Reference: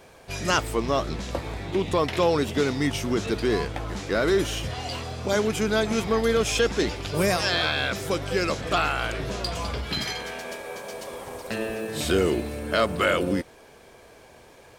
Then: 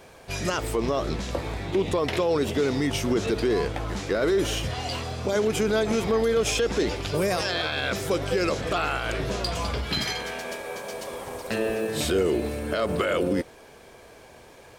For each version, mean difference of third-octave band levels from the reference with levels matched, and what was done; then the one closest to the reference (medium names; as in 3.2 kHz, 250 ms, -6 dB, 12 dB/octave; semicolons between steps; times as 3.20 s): 2.0 dB: dynamic bell 450 Hz, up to +5 dB, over -33 dBFS, Q 1.3; peak limiter -17 dBFS, peak gain reduction 10 dB; trim +1.5 dB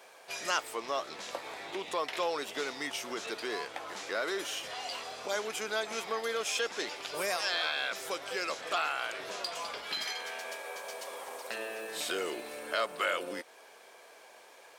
7.5 dB: high-pass 610 Hz 12 dB/octave; in parallel at +1.5 dB: compression, threshold -37 dBFS, peak gain reduction 18 dB; on the sum: trim -8.5 dB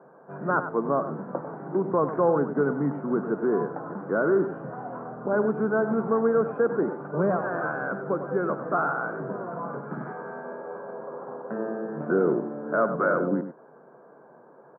13.5 dB: Chebyshev band-pass 140–1500 Hz, order 5; on a send: delay 98 ms -10.5 dB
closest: first